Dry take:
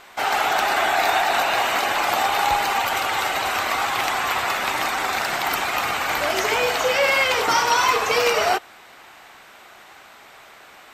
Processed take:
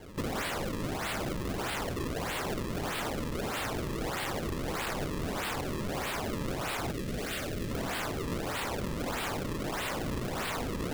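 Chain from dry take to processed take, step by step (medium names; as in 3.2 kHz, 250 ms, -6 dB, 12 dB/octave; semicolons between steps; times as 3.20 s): tracing distortion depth 0.034 ms; echo that smears into a reverb 938 ms, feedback 48%, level -3.5 dB; reverberation RT60 0.35 s, pre-delay 3 ms, DRR 2 dB; peak limiter -12.5 dBFS, peak gain reduction 10 dB; 3.86–4.97 s: peaking EQ 2.1 kHz -14 dB 1.8 oct; decimation with a swept rate 34×, swing 160% 1.6 Hz; integer overflow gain 24 dB; gain riding 0.5 s; 6.92–7.71 s: peaking EQ 960 Hz -14 dB 0.54 oct; trim -5 dB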